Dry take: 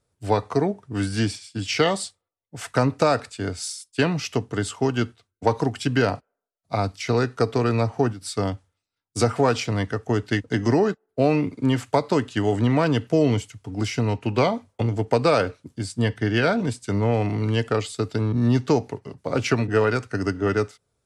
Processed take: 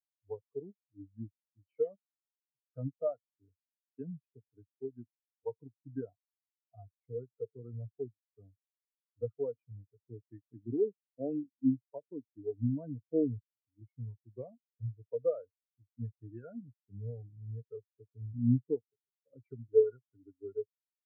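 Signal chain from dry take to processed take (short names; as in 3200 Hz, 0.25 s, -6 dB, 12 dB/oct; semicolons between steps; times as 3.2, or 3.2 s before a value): elliptic low-pass 4500 Hz; spectral expander 4:1; gain -8 dB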